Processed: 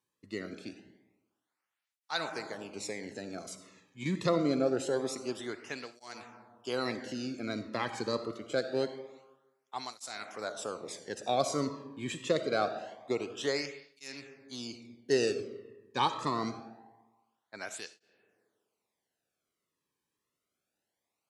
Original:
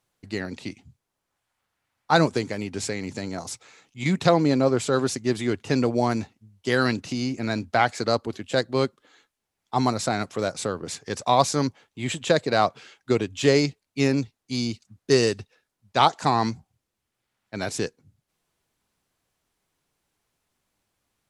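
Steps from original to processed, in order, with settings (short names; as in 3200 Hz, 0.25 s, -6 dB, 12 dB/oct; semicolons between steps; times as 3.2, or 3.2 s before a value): on a send at -9 dB: reverb RT60 1.2 s, pre-delay 20 ms; on the sum: tape flanging out of phase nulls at 0.25 Hz, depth 1.5 ms; gain -7 dB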